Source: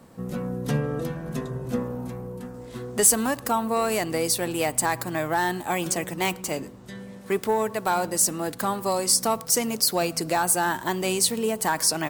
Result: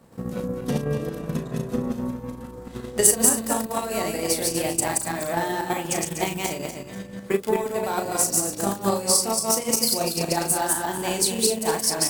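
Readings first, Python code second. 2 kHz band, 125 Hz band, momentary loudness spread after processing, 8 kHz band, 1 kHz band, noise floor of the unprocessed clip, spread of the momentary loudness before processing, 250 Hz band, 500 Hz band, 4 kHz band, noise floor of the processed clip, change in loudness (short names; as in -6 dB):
-2.5 dB, +0.5 dB, 12 LU, +2.5 dB, -1.5 dB, -42 dBFS, 13 LU, +1.5 dB, +1.0 dB, +1.5 dB, -40 dBFS, +1.0 dB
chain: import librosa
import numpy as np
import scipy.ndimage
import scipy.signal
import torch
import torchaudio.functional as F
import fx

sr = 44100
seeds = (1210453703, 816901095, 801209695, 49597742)

y = fx.reverse_delay_fb(x, sr, ms=122, feedback_pct=53, wet_db=0)
y = fx.dynamic_eq(y, sr, hz=1400.0, q=1.0, threshold_db=-36.0, ratio=4.0, max_db=-5)
y = fx.doubler(y, sr, ms=36.0, db=-5.0)
y = fx.transient(y, sr, attack_db=8, sustain_db=-4)
y = F.gain(torch.from_numpy(y), -4.5).numpy()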